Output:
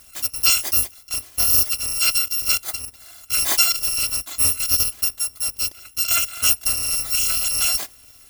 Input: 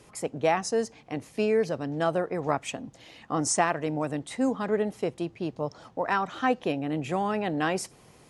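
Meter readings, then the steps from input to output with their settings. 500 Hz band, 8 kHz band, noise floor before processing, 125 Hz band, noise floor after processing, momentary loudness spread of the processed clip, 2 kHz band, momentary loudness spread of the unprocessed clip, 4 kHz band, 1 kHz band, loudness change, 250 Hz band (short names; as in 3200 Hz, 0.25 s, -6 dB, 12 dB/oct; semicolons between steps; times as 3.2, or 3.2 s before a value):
-17.0 dB, +17.0 dB, -56 dBFS, -3.5 dB, -49 dBFS, 9 LU, +5.5 dB, 10 LU, +19.5 dB, -7.0 dB, +10.5 dB, -16.5 dB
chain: FFT order left unsorted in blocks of 256 samples; gain +7 dB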